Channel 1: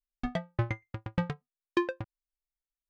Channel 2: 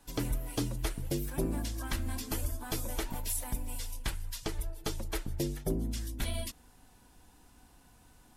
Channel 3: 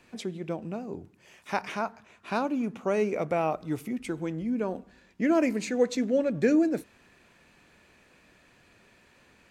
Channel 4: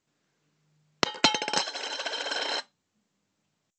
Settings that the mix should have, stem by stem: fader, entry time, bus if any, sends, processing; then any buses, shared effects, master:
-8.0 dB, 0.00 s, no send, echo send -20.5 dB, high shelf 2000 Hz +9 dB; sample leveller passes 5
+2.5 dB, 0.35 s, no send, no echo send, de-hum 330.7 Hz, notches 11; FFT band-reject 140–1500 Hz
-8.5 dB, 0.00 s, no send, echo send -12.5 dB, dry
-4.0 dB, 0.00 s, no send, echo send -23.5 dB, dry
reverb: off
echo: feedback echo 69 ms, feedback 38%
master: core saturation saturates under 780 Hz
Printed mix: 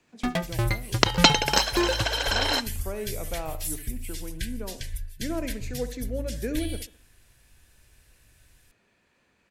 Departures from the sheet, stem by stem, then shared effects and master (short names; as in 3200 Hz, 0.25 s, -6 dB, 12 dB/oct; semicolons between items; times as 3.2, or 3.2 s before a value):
stem 4 -4.0 dB -> +5.0 dB; master: missing core saturation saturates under 780 Hz